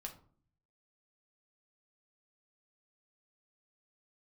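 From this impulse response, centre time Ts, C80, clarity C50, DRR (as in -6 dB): 12 ms, 16.5 dB, 12.0 dB, 1.5 dB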